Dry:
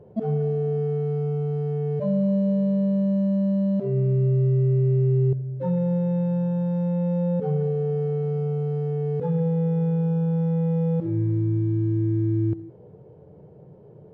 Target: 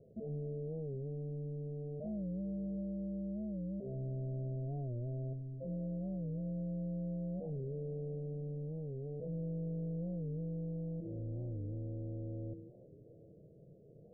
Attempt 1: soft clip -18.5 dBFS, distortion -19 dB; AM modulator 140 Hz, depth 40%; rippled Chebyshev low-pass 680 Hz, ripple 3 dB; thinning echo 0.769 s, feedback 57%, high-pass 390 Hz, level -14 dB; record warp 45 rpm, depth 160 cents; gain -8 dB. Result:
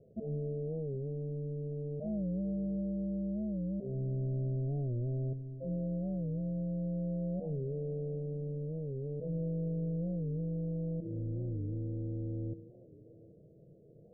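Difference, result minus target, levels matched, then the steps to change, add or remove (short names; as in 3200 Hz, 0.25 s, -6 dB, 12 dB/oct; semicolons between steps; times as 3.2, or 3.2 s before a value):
soft clip: distortion -9 dB
change: soft clip -26.5 dBFS, distortion -11 dB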